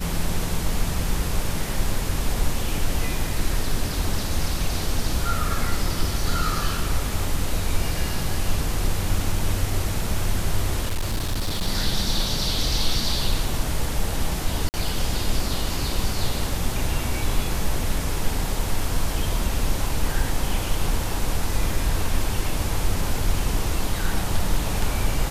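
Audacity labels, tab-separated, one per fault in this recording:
10.860000	11.680000	clipped -20 dBFS
14.690000	14.740000	dropout 49 ms

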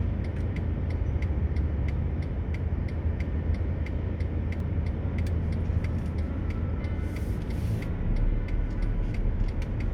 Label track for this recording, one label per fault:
4.600000	4.600000	dropout 2.7 ms

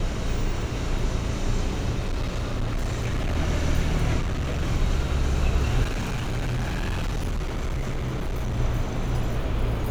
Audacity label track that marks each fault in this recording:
1.990000	3.370000	clipped -22 dBFS
4.200000	4.630000	clipped -23 dBFS
5.830000	8.590000	clipped -23.5 dBFS

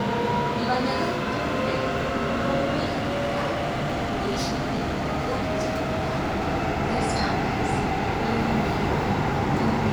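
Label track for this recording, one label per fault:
2.850000	6.480000	clipped -22 dBFS

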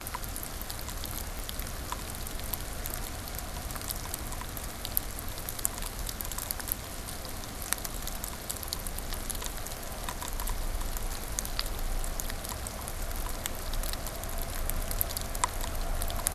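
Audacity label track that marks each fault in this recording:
1.390000	1.390000	pop
12.200000	12.200000	dropout 2.4 ms
13.890000	13.890000	pop

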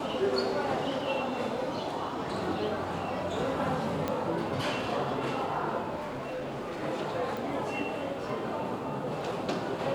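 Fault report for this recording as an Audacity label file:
4.080000	4.080000	pop -17 dBFS
5.950000	6.840000	clipped -33 dBFS
7.370000	7.370000	pop

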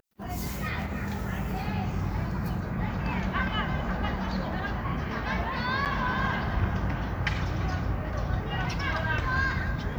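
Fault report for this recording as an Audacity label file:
5.850000	5.860000	dropout 8.3 ms

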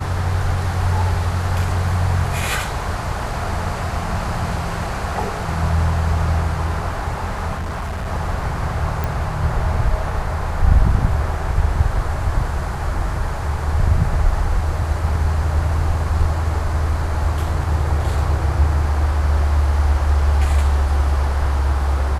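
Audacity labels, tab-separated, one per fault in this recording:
7.560000	8.080000	clipped -21.5 dBFS
9.040000	9.040000	pop

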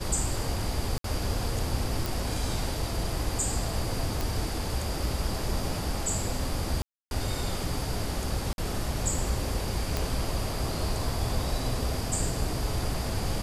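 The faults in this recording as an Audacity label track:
0.980000	1.040000	dropout 63 ms
2.060000	2.060000	pop
4.210000	4.210000	pop
6.820000	7.110000	dropout 291 ms
8.530000	8.580000	dropout 51 ms
9.970000	9.970000	pop

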